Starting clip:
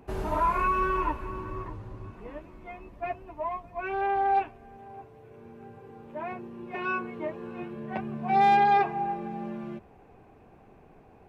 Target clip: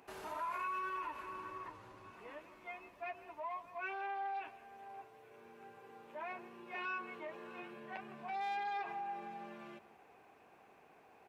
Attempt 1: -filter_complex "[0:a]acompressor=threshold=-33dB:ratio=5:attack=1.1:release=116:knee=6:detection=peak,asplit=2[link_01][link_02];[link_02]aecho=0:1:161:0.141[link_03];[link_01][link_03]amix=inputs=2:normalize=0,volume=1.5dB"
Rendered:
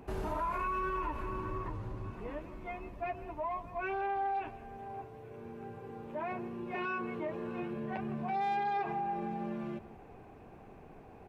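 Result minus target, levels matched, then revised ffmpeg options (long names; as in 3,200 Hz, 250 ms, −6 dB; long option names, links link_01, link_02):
2,000 Hz band −4.0 dB
-filter_complex "[0:a]acompressor=threshold=-33dB:ratio=5:attack=1.1:release=116:knee=6:detection=peak,highpass=frequency=1500:poles=1,asplit=2[link_01][link_02];[link_02]aecho=0:1:161:0.141[link_03];[link_01][link_03]amix=inputs=2:normalize=0,volume=1.5dB"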